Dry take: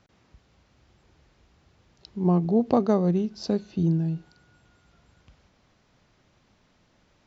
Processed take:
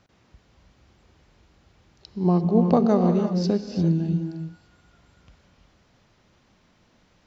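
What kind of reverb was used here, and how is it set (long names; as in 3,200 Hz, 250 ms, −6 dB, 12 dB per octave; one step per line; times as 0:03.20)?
reverb whose tail is shaped and stops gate 370 ms rising, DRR 5 dB
level +1.5 dB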